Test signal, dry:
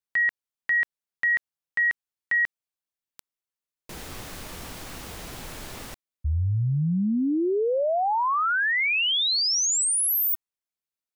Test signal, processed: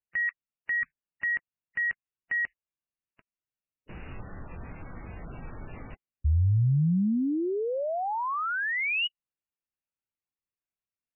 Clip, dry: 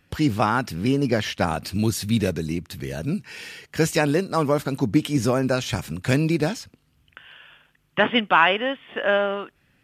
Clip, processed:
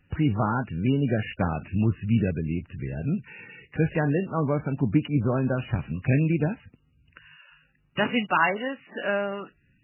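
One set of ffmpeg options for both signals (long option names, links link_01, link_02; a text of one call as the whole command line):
ffmpeg -i in.wav -af "bass=frequency=250:gain=8,treble=frequency=4000:gain=14,volume=-6dB" -ar 11025 -c:a libmp3lame -b:a 8k out.mp3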